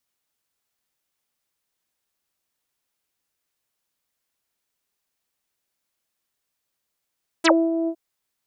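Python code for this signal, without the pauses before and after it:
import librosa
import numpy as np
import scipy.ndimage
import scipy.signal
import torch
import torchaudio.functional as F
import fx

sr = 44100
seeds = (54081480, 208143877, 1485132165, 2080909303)

y = fx.sub_voice(sr, note=64, wave='saw', cutoff_hz=550.0, q=8.7, env_oct=4.5, env_s=0.07, attack_ms=15.0, decay_s=0.25, sustain_db=-7.5, release_s=0.07, note_s=0.44, slope=24)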